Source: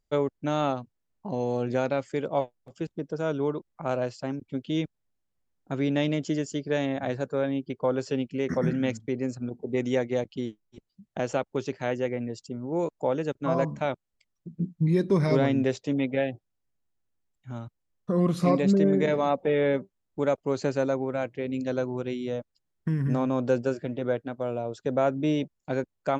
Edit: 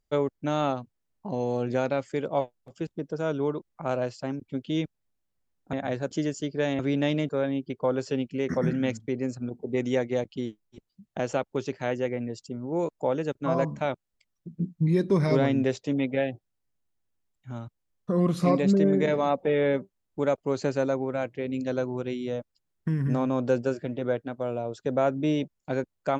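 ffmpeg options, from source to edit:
-filter_complex "[0:a]asplit=5[a][b][c][d][e];[a]atrim=end=5.732[f];[b]atrim=start=6.908:end=7.292[g];[c]atrim=start=6.228:end=6.912[h];[d]atrim=start=5.728:end=6.232[i];[e]atrim=start=7.288[j];[f][g]acrossfade=d=0.004:c1=hsin:c2=hsin[k];[k][h]acrossfade=d=0.004:c1=hsin:c2=hsin[l];[l][i]acrossfade=d=0.004:c1=hsin:c2=hsin[m];[m][j]acrossfade=d=0.004:c1=hsin:c2=hsin"

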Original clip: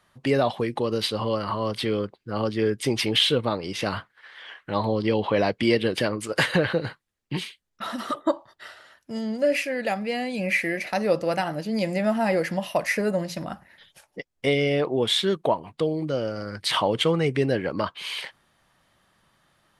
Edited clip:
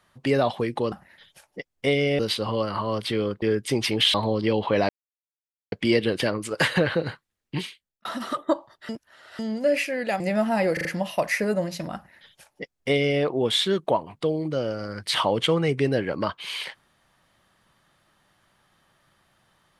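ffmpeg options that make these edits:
-filter_complex "[0:a]asplit=13[a][b][c][d][e][f][g][h][i][j][k][l][m];[a]atrim=end=0.922[n];[b]atrim=start=13.518:end=14.792[o];[c]atrim=start=0.918:end=2.152[p];[d]atrim=start=2.568:end=3.292[q];[e]atrim=start=4.748:end=5.5,asetpts=PTS-STARTPTS,afade=t=out:st=0.748:d=0.004:c=hsin,apad=pad_dur=0.83[r];[f]atrim=start=5.5:end=7.83,asetpts=PTS-STARTPTS,afade=t=in:d=0.004:c=hsin,afade=t=out:st=1.85:d=0.48[s];[g]atrim=start=7.83:end=8.672,asetpts=PTS-STARTPTS,afade=t=in:d=0.004:c=hsin[t];[h]atrim=start=8.668:end=9.172,asetpts=PTS-STARTPTS,areverse[u];[i]atrim=start=9.168:end=9.982[v];[j]atrim=start=11.888:end=12.462[w];[k]atrim=start=12.418:end=12.462[x];[l]atrim=start=12.418:end=12.462[y];[m]atrim=start=12.418[z];[n][o]acrossfade=d=0.004:c1=hsin:c2=hsin[aa];[aa][p]acrossfade=d=0.004:c1=hsin:c2=hsin[ab];[ab][q]acrossfade=d=0.004:c1=hsin:c2=hsin[ac];[r][s][t]concat=n=3:v=0:a=1[ad];[ac][ad]acrossfade=d=0.004:c1=hsin:c2=hsin[ae];[ae][u]acrossfade=d=0.004:c1=hsin:c2=hsin[af];[af][v]acrossfade=d=0.004:c1=hsin:c2=hsin[ag];[ag][w]acrossfade=d=0.004:c1=hsin:c2=hsin[ah];[ah][x]acrossfade=d=0.004:c1=hsin:c2=hsin[ai];[ai][y]acrossfade=d=0.004:c1=hsin:c2=hsin[aj];[aj][z]acrossfade=d=0.004:c1=hsin:c2=hsin"

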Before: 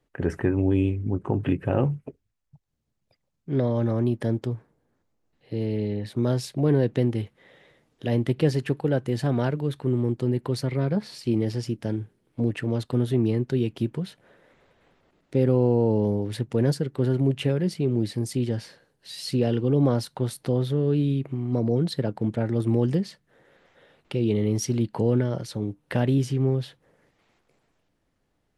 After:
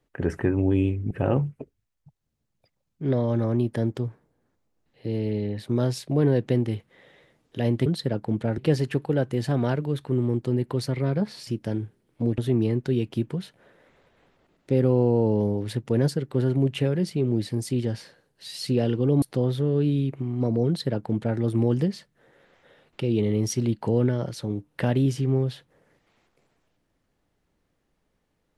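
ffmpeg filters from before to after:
-filter_complex "[0:a]asplit=7[a][b][c][d][e][f][g];[a]atrim=end=1.112[h];[b]atrim=start=1.578:end=8.332[i];[c]atrim=start=21.788:end=22.512[j];[d]atrim=start=8.328:end=11.222[k];[e]atrim=start=11.648:end=12.562[l];[f]atrim=start=13.018:end=19.862[m];[g]atrim=start=20.338[n];[h][i]acrossfade=d=0.004:c1=hsin:c2=hsin[o];[o][j]acrossfade=d=0.004:c1=hsin:c2=hsin[p];[p][k]acrossfade=d=0.004:c1=hsin:c2=hsin[q];[q][l]acrossfade=d=0.004:c1=hsin:c2=hsin[r];[r][m]acrossfade=d=0.004:c1=hsin:c2=hsin[s];[s][n]acrossfade=d=0.004:c1=hsin:c2=hsin"

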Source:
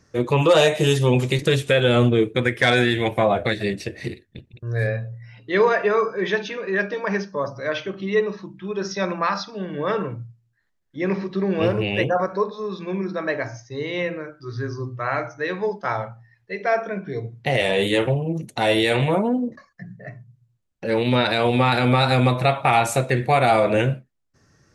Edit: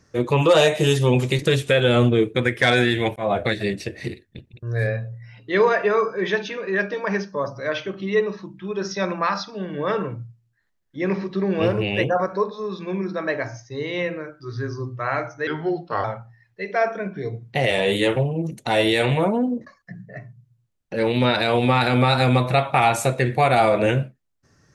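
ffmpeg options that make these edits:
-filter_complex "[0:a]asplit=4[a][b][c][d];[a]atrim=end=3.16,asetpts=PTS-STARTPTS,afade=t=out:st=3.156:d=0.004:c=hsin[e];[b]atrim=start=3.16:end=15.474,asetpts=PTS-STARTPTS,afade=t=in:d=0.25:c=qsin[f];[c]atrim=start=15.47:end=15.95,asetpts=PTS-STARTPTS,asetrate=37044,aresample=44100[g];[d]atrim=start=15.946[h];[e][f]concat=n=2:v=0:a=1[i];[i][g]acrossfade=d=0.004:c1=hsin:c2=hsin[j];[j][h]acrossfade=d=0.004:c1=hsin:c2=hsin"

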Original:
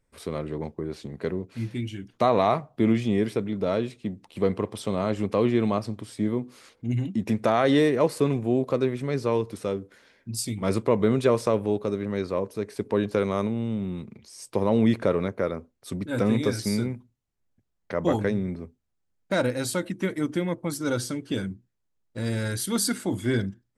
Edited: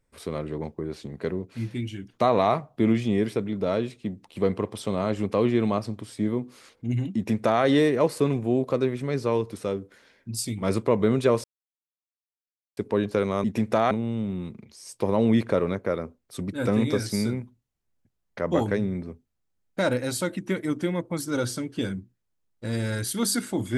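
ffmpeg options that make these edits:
-filter_complex "[0:a]asplit=5[a][b][c][d][e];[a]atrim=end=11.44,asetpts=PTS-STARTPTS,afade=t=out:st=11.436:d=0.004:c=hsin[f];[b]atrim=start=11.44:end=12.77,asetpts=PTS-STARTPTS,volume=0[g];[c]atrim=start=12.77:end=13.442,asetpts=PTS-STARTPTS,afade=t=in:d=0.004:c=hsin[h];[d]atrim=start=7.158:end=7.632[i];[e]atrim=start=13.438[j];[f][g][h]concat=n=3:v=0:a=1[k];[k][i]acrossfade=d=0.004:c1=hsin:c2=hsin[l];[l][j]acrossfade=d=0.004:c1=hsin:c2=hsin"

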